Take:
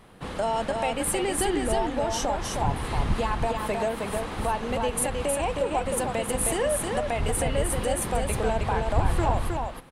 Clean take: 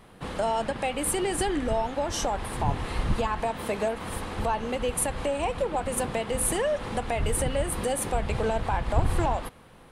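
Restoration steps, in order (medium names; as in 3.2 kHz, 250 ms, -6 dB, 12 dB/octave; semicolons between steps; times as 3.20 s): inverse comb 314 ms -4 dB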